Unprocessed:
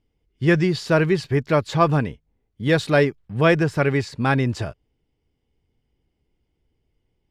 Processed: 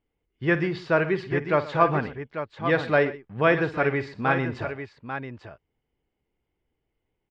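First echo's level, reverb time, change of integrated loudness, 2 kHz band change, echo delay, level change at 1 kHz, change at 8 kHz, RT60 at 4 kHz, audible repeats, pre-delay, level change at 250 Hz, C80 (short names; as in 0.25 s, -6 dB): -13.5 dB, none, -4.5 dB, -1.0 dB, 53 ms, -0.5 dB, under -15 dB, none, 3, none, -6.0 dB, none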